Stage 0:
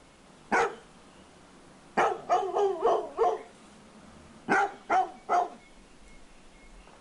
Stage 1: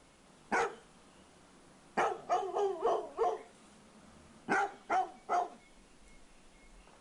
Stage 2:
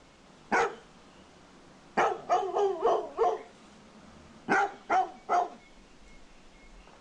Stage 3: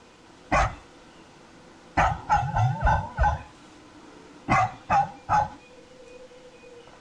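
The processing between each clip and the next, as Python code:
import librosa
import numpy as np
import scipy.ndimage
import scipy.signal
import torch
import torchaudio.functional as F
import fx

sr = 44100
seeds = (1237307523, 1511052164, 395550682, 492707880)

y1 = fx.high_shelf(x, sr, hz=8600.0, db=6.0)
y1 = y1 * 10.0 ** (-6.5 / 20.0)
y2 = scipy.signal.sosfilt(scipy.signal.butter(4, 7100.0, 'lowpass', fs=sr, output='sos'), y1)
y2 = y2 * 10.0 ** (5.5 / 20.0)
y3 = fx.band_invert(y2, sr, width_hz=500)
y3 = y3 * 10.0 ** (4.5 / 20.0)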